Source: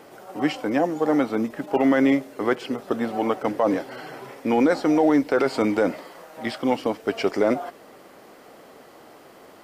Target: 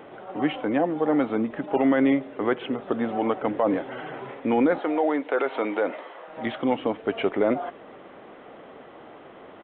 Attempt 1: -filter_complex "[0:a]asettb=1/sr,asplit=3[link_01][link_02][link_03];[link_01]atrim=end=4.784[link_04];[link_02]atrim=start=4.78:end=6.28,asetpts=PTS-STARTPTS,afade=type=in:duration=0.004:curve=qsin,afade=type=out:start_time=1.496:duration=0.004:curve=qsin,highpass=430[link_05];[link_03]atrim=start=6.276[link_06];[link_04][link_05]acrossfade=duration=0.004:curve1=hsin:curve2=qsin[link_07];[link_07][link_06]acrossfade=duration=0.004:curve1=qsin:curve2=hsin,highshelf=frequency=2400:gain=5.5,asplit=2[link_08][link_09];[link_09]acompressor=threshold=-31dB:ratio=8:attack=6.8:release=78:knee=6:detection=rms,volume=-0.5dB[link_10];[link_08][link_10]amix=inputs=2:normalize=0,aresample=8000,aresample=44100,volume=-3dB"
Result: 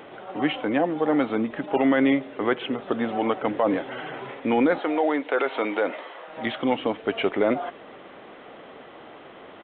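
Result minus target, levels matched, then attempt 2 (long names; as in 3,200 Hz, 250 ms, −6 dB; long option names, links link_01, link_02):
4,000 Hz band +5.0 dB
-filter_complex "[0:a]asettb=1/sr,asplit=3[link_01][link_02][link_03];[link_01]atrim=end=4.784[link_04];[link_02]atrim=start=4.78:end=6.28,asetpts=PTS-STARTPTS,afade=type=in:duration=0.004:curve=qsin,afade=type=out:start_time=1.496:duration=0.004:curve=qsin,highpass=430[link_05];[link_03]atrim=start=6.276[link_06];[link_04][link_05]acrossfade=duration=0.004:curve1=hsin:curve2=qsin[link_07];[link_07][link_06]acrossfade=duration=0.004:curve1=qsin:curve2=hsin,highshelf=frequency=2400:gain=-4,asplit=2[link_08][link_09];[link_09]acompressor=threshold=-31dB:ratio=8:attack=6.8:release=78:knee=6:detection=rms,volume=-0.5dB[link_10];[link_08][link_10]amix=inputs=2:normalize=0,aresample=8000,aresample=44100,volume=-3dB"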